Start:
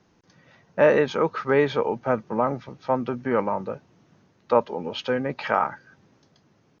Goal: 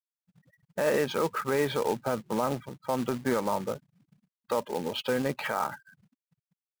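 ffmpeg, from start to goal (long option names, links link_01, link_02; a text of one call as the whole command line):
ffmpeg -i in.wav -af "alimiter=limit=-16dB:level=0:latency=1:release=71,afftfilt=real='re*gte(hypot(re,im),0.01)':imag='im*gte(hypot(re,im),0.01)':win_size=1024:overlap=0.75,acrusher=bits=3:mode=log:mix=0:aa=0.000001,volume=-1.5dB" out.wav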